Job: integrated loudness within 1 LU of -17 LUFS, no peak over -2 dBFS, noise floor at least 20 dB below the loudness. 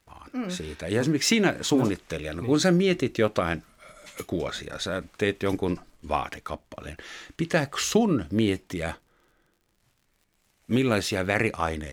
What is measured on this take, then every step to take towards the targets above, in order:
tick rate 51 per s; loudness -26.0 LUFS; peak level -8.5 dBFS; loudness target -17.0 LUFS
-> de-click; trim +9 dB; peak limiter -2 dBFS

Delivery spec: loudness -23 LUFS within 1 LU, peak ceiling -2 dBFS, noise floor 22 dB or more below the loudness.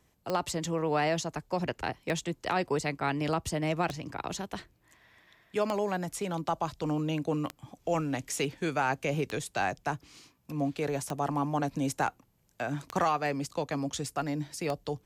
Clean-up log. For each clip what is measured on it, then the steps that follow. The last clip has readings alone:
clicks found 9; loudness -32.0 LUFS; peak level -14.5 dBFS; loudness target -23.0 LUFS
-> de-click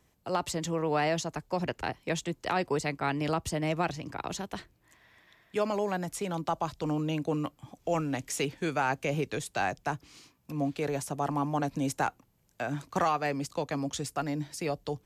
clicks found 0; loudness -32.0 LUFS; peak level -16.5 dBFS; loudness target -23.0 LUFS
-> trim +9 dB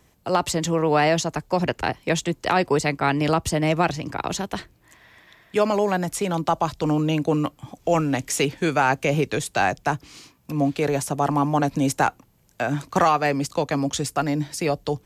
loudness -23.0 LUFS; peak level -7.5 dBFS; noise floor -59 dBFS

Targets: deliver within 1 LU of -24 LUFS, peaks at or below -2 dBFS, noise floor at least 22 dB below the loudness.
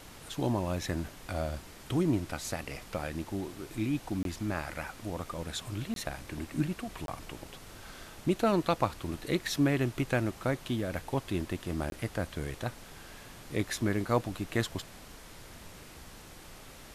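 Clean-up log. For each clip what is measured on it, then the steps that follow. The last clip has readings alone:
dropouts 4; longest dropout 22 ms; noise floor -50 dBFS; noise floor target -56 dBFS; loudness -33.5 LUFS; peak level -13.0 dBFS; loudness target -24.0 LUFS
-> interpolate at 4.23/5.94/7.06/11.90 s, 22 ms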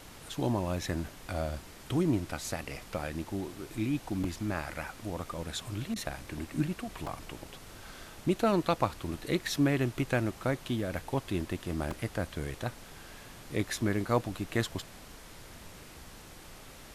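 dropouts 0; noise floor -50 dBFS; noise floor target -56 dBFS
-> noise print and reduce 6 dB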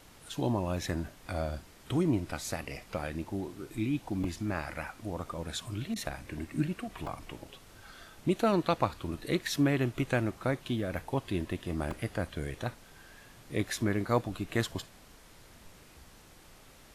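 noise floor -56 dBFS; loudness -33.5 LUFS; peak level -13.0 dBFS; loudness target -24.0 LUFS
-> trim +9.5 dB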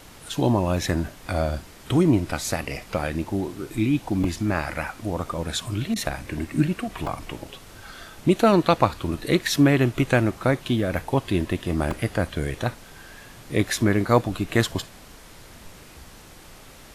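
loudness -24.0 LUFS; peak level -3.5 dBFS; noise floor -46 dBFS

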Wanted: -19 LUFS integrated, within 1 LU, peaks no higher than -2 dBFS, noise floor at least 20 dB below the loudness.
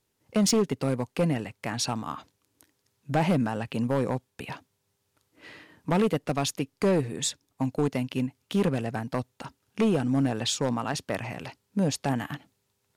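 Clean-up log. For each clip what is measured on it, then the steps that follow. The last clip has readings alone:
clipped samples 1.3%; clipping level -18.0 dBFS; loudness -28.0 LUFS; peak level -18.0 dBFS; loudness target -19.0 LUFS
-> clip repair -18 dBFS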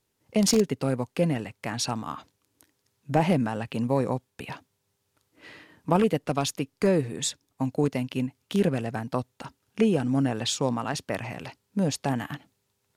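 clipped samples 0.0%; loudness -27.0 LUFS; peak level -9.0 dBFS; loudness target -19.0 LUFS
-> trim +8 dB; peak limiter -2 dBFS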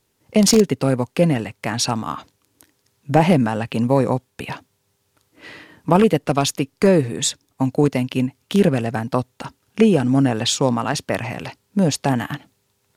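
loudness -19.0 LUFS; peak level -2.0 dBFS; noise floor -68 dBFS

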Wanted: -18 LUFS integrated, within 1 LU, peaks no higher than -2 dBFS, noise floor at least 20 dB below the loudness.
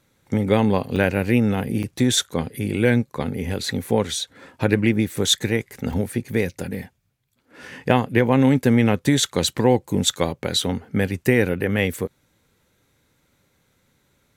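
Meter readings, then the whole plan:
dropouts 4; longest dropout 3.8 ms; loudness -21.5 LUFS; peak level -1.5 dBFS; loudness target -18.0 LUFS
-> interpolate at 0.96/1.83/5.93/10.62 s, 3.8 ms; trim +3.5 dB; peak limiter -2 dBFS

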